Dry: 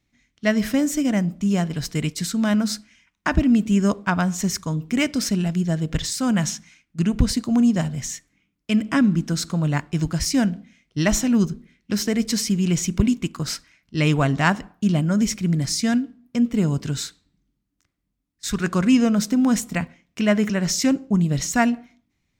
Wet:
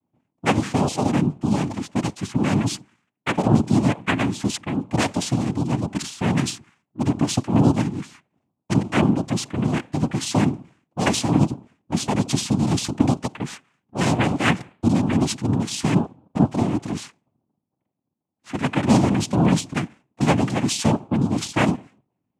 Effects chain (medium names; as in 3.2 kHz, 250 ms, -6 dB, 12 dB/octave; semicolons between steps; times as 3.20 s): level-controlled noise filter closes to 650 Hz, open at -16.5 dBFS; noise-vocoded speech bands 4